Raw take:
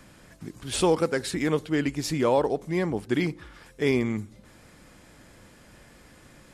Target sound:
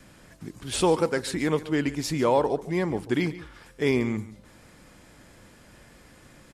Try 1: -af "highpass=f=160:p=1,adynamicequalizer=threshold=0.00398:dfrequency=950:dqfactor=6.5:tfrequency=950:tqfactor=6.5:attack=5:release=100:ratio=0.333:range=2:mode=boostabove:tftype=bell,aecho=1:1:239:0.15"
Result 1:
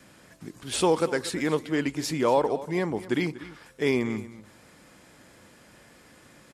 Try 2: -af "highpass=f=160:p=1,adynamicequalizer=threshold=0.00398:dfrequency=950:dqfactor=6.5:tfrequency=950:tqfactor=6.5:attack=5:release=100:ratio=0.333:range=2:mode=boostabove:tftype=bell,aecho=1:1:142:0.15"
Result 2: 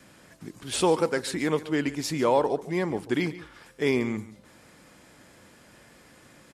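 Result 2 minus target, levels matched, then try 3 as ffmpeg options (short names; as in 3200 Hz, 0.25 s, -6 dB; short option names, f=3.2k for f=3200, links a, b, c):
125 Hz band -2.5 dB
-af "adynamicequalizer=threshold=0.00398:dfrequency=950:dqfactor=6.5:tfrequency=950:tqfactor=6.5:attack=5:release=100:ratio=0.333:range=2:mode=boostabove:tftype=bell,aecho=1:1:142:0.15"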